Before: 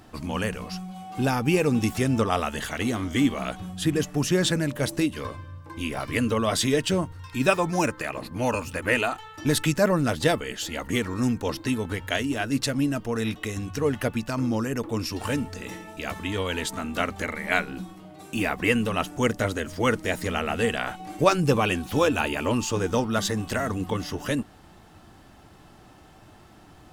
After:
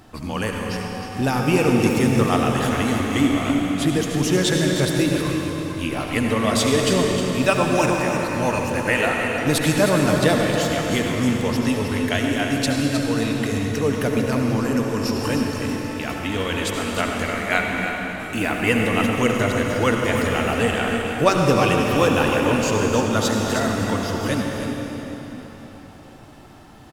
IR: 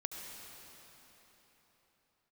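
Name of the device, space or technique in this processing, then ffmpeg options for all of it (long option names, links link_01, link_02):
cave: -filter_complex "[0:a]aecho=1:1:312:0.355[link_01];[1:a]atrim=start_sample=2205[link_02];[link_01][link_02]afir=irnorm=-1:irlink=0,volume=5dB"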